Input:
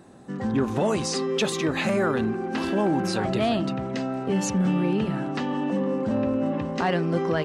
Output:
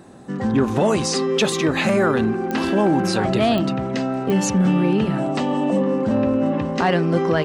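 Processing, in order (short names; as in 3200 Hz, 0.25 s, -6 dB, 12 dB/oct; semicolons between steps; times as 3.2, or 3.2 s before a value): 5.18–5.82 thirty-one-band EQ 630 Hz +9 dB, 1600 Hz -8 dB, 8000 Hz +9 dB; pops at 2.51/3.58/4.3, -18 dBFS; gain +5.5 dB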